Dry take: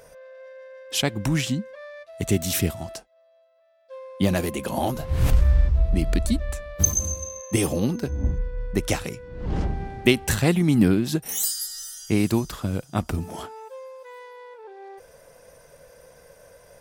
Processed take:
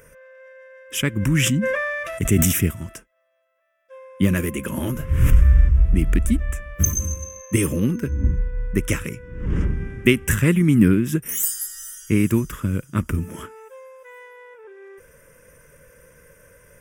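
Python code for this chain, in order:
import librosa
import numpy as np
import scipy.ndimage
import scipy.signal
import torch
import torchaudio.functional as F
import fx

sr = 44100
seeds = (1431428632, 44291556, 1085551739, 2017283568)

y = fx.fixed_phaser(x, sr, hz=1800.0, stages=4)
y = fx.sustainer(y, sr, db_per_s=21.0, at=(1.16, 2.51), fade=0.02)
y = y * 10.0 ** (4.5 / 20.0)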